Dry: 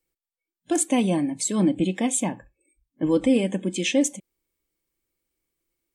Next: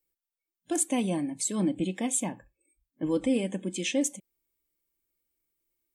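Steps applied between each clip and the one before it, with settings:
high-shelf EQ 11,000 Hz +11 dB
level −6.5 dB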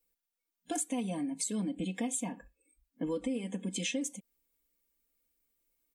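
comb filter 4.2 ms, depth 83%
downward compressor 6 to 1, threshold −32 dBFS, peak gain reduction 14.5 dB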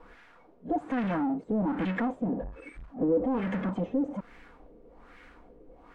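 power curve on the samples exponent 0.35
auto-filter low-pass sine 1.2 Hz 450–1,900 Hz
level −3 dB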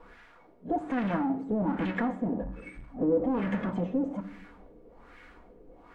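convolution reverb RT60 0.75 s, pre-delay 4 ms, DRR 9.5 dB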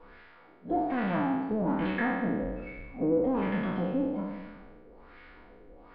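peak hold with a decay on every bin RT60 1.24 s
downsampling to 11,025 Hz
level −2.5 dB

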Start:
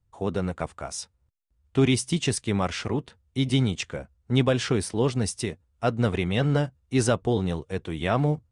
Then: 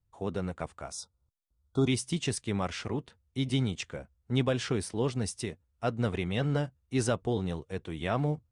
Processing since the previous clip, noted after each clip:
gain on a spectral selection 0:00.92–0:01.88, 1,500–3,300 Hz −28 dB
level −6 dB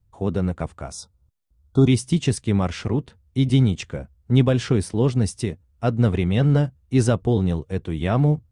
low-shelf EQ 360 Hz +10 dB
level +4 dB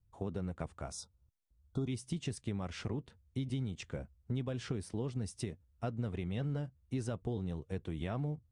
downward compressor, threshold −25 dBFS, peak gain reduction 13 dB
level −9 dB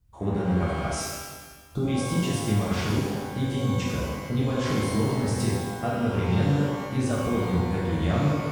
reverb with rising layers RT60 1.4 s, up +12 semitones, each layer −8 dB, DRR −6.5 dB
level +6 dB

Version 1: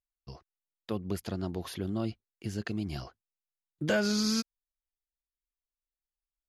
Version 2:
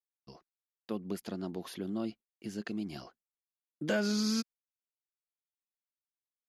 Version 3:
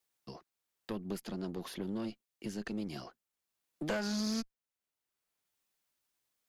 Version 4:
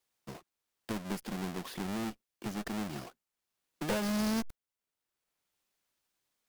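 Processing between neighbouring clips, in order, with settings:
noise gate with hold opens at −55 dBFS; low shelf with overshoot 140 Hz −12 dB, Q 1.5; level −4 dB
one-sided soft clipper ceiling −37.5 dBFS; multiband upward and downward compressor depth 40%; level +1 dB
each half-wave held at its own peak; level −2.5 dB

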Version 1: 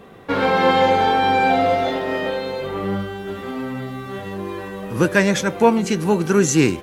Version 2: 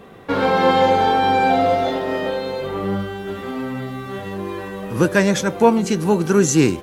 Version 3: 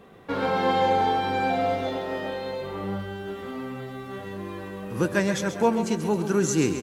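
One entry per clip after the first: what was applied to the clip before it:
dynamic equaliser 2,200 Hz, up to −4 dB, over −36 dBFS, Q 1.3; level +1 dB
repeating echo 134 ms, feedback 52%, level −10 dB; level −8 dB

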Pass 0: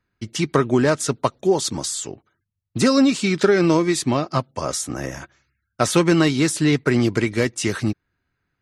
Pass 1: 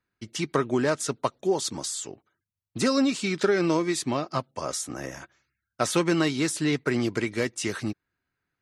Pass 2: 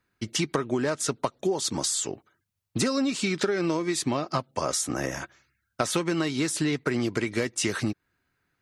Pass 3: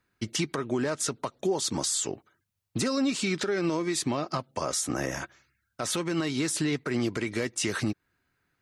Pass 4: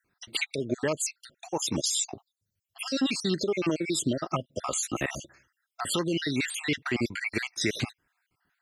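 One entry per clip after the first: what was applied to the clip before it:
low-shelf EQ 150 Hz −8 dB; level −5.5 dB
downward compressor, threshold −30 dBFS, peak gain reduction 12 dB; level +7 dB
brickwall limiter −18.5 dBFS, peak gain reduction 9 dB
time-frequency cells dropped at random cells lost 57%; dynamic equaliser 2,800 Hz, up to +7 dB, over −51 dBFS, Q 1.2; level +2 dB

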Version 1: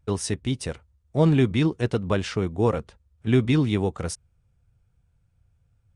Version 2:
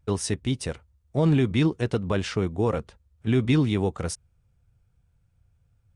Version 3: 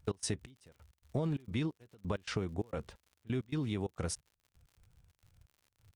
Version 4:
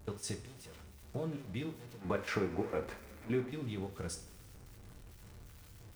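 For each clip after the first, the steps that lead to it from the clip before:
brickwall limiter −13 dBFS, peak gain reduction 4.5 dB
downward compressor 10 to 1, threshold −31 dBFS, peak gain reduction 14.5 dB; gate pattern "x.xx...x.xx" 132 BPM −24 dB; surface crackle 86 per second −53 dBFS
converter with a step at zero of −43 dBFS; gain on a spectral selection 0:02.02–0:03.49, 210–2,600 Hz +8 dB; coupled-rooms reverb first 0.39 s, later 2.4 s, from −18 dB, DRR 4 dB; level −6.5 dB

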